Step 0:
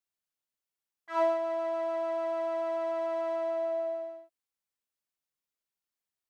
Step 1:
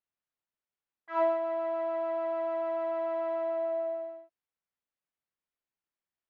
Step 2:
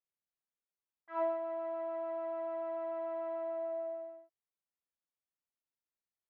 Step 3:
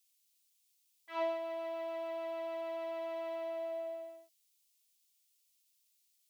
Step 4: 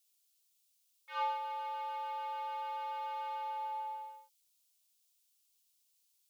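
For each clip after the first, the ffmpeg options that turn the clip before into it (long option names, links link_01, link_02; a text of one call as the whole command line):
ffmpeg -i in.wav -af "lowpass=2600" out.wav
ffmpeg -i in.wav -af "highshelf=frequency=3000:gain=-11,volume=-6dB" out.wav
ffmpeg -i in.wav -af "aexciter=amount=10.6:drive=4.2:freq=2300,volume=-1.5dB" out.wav
ffmpeg -i in.wav -af "afreqshift=210" out.wav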